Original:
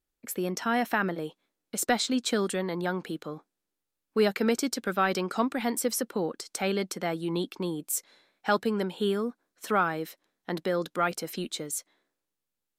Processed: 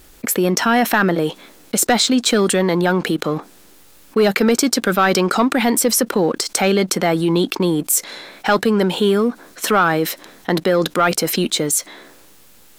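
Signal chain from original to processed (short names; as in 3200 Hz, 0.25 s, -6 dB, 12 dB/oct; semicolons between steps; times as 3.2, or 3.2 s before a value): sample leveller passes 1; fast leveller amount 50%; gain +6 dB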